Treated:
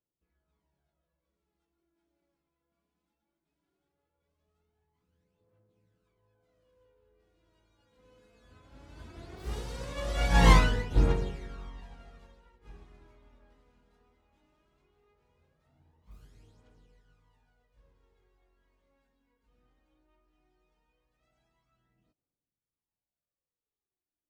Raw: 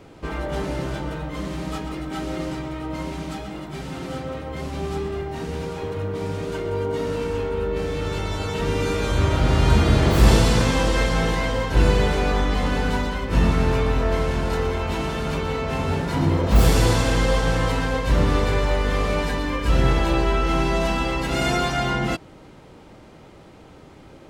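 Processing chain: Doppler pass-by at 10.51 s, 25 m/s, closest 2.5 m; phaser 0.18 Hz, delay 4.3 ms, feedback 53%; upward expansion 1.5:1, over -52 dBFS; trim +3 dB

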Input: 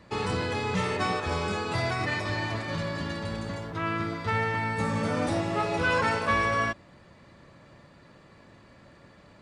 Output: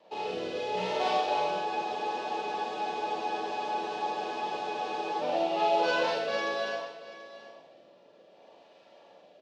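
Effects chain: median filter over 15 samples; Chebyshev band-pass 660–3600 Hz, order 2; high-order bell 1.5 kHz -13.5 dB 1.3 oct; in parallel at -2 dB: gain riding; on the sum: Schroeder reverb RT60 0.72 s, combs from 33 ms, DRR -4 dB; rotary cabinet horn 0.65 Hz; on a send: delay 735 ms -16 dB; on the sum: spectral freeze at 1.68 s, 3.53 s

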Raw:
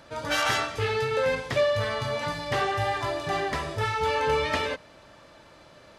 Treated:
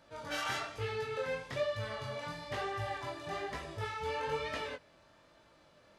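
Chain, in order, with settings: chorus 1.1 Hz, delay 17.5 ms, depth 7.1 ms; trim -8.5 dB

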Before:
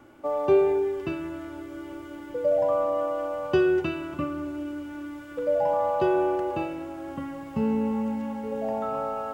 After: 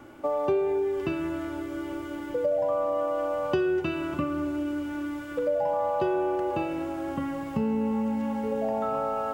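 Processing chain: compression 3:1, threshold -30 dBFS, peak gain reduction 11 dB; trim +4.5 dB

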